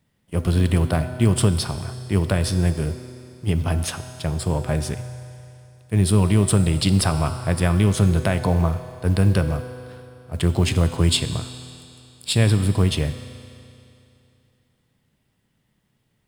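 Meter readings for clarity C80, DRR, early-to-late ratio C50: 10.5 dB, 9.0 dB, 10.0 dB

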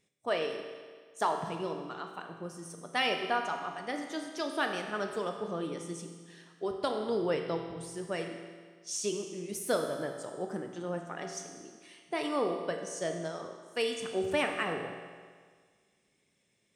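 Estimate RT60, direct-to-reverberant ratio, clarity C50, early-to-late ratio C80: 1.7 s, 4.0 dB, 5.5 dB, 7.0 dB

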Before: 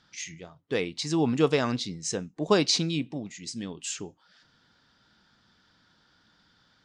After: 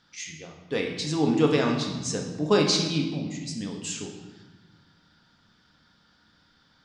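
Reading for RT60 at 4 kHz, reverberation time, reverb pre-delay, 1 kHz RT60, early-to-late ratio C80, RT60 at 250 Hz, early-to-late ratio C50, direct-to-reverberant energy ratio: 1.0 s, 1.2 s, 4 ms, 1.2 s, 7.0 dB, 2.0 s, 5.0 dB, 1.0 dB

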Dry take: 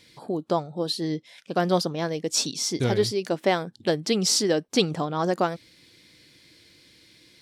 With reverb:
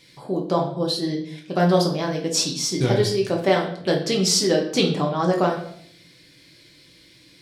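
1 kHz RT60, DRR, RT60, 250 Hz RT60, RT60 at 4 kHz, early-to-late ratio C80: 0.60 s, −0.5 dB, 0.65 s, 0.75 s, 0.55 s, 11.5 dB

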